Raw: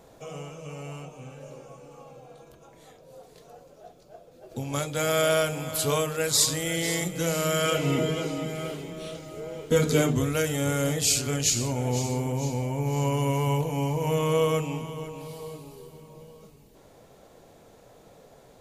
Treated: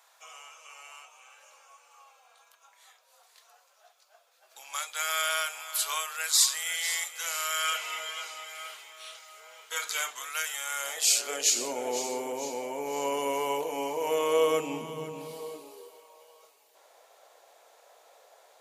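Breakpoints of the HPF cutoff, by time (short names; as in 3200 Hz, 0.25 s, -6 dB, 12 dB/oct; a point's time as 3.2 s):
HPF 24 dB/oct
10.7 s 1000 Hz
11.59 s 350 Hz
14.3 s 350 Hz
15.12 s 160 Hz
16.12 s 620 Hz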